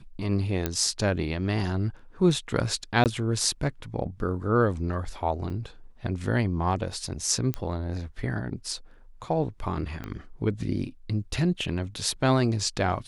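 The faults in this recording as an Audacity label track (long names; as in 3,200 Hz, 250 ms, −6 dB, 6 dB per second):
0.660000	0.660000	click −11 dBFS
3.040000	3.060000	drop-out 18 ms
5.500000	5.500000	drop-out 3.3 ms
7.540000	7.540000	click −14 dBFS
10.040000	10.040000	click −21 dBFS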